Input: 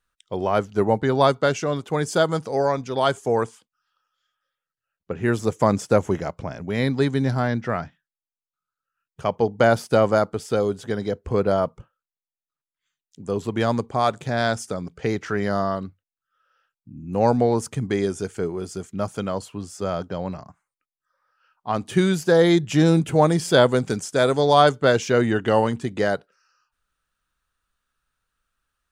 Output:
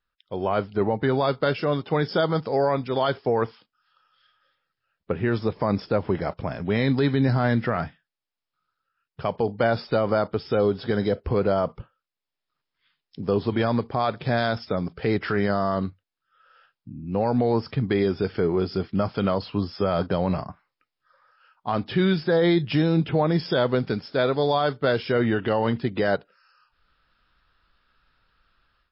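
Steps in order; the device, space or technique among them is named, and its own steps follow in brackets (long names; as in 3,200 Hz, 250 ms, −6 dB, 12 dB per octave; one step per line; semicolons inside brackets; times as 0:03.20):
low-bitrate web radio (automatic gain control gain up to 16 dB; brickwall limiter −8.5 dBFS, peak gain reduction 8 dB; level −3.5 dB; MP3 24 kbit/s 12,000 Hz)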